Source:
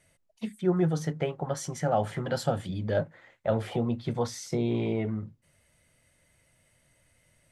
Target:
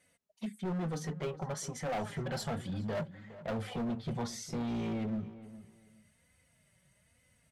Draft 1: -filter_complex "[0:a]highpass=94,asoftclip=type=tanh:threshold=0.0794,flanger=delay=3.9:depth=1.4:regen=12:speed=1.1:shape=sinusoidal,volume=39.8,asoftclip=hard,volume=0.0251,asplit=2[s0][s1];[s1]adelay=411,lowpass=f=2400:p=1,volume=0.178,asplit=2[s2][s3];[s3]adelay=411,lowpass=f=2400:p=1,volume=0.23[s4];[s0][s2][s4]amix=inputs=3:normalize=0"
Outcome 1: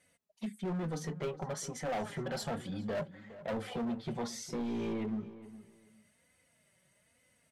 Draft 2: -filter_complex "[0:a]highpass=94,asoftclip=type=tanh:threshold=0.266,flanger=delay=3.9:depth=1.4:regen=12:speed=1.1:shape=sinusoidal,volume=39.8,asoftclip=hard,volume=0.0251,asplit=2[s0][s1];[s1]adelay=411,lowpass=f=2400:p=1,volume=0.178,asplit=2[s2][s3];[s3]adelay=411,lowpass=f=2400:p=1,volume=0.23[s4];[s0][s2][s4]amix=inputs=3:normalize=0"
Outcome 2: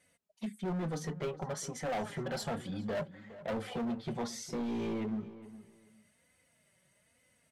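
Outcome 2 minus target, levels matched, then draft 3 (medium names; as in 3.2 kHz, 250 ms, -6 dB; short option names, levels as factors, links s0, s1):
125 Hz band -3.0 dB
-filter_complex "[0:a]highpass=94,asubboost=boost=3.5:cutoff=160,asoftclip=type=tanh:threshold=0.266,flanger=delay=3.9:depth=1.4:regen=12:speed=1.1:shape=sinusoidal,volume=39.8,asoftclip=hard,volume=0.0251,asplit=2[s0][s1];[s1]adelay=411,lowpass=f=2400:p=1,volume=0.178,asplit=2[s2][s3];[s3]adelay=411,lowpass=f=2400:p=1,volume=0.23[s4];[s0][s2][s4]amix=inputs=3:normalize=0"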